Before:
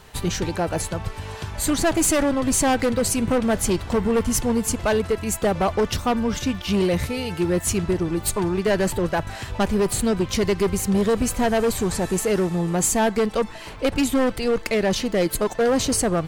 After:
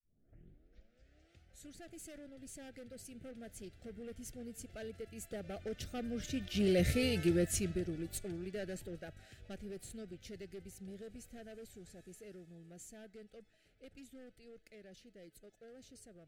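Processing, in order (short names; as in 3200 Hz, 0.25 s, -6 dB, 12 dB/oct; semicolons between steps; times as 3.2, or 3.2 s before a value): tape start at the beginning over 1.78 s; Doppler pass-by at 7.04, 7 m/s, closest 1.7 m; Butterworth band-stop 1000 Hz, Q 1.3; gain -5 dB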